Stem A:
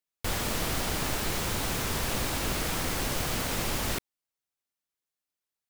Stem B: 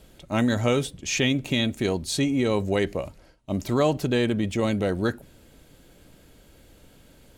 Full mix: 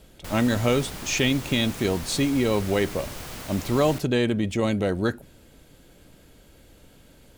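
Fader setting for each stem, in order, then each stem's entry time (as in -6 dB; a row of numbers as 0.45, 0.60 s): -7.0, +0.5 dB; 0.00, 0.00 s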